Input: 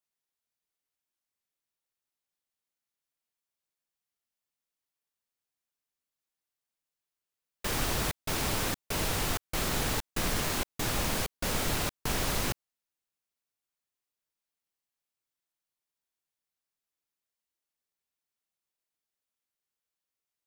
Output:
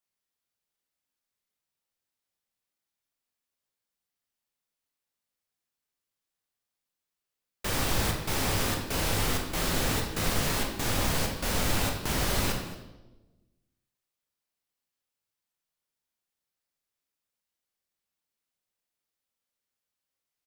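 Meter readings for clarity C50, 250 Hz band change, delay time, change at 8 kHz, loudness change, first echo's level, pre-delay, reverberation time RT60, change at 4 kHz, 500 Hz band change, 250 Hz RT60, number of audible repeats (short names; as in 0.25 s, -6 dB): 4.5 dB, +3.5 dB, 0.223 s, +1.5 dB, +2.5 dB, -16.0 dB, 18 ms, 1.1 s, +2.5 dB, +3.0 dB, 1.4 s, 1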